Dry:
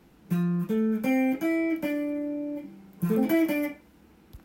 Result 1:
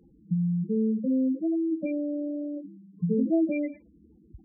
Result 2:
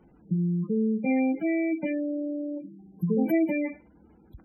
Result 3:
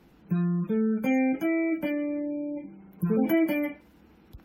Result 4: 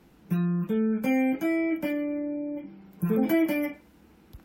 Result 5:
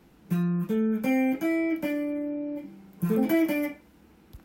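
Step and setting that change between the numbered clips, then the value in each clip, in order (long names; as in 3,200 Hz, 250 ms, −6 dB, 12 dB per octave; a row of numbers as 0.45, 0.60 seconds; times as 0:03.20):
gate on every frequency bin, under each frame's peak: −10, −20, −35, −45, −60 decibels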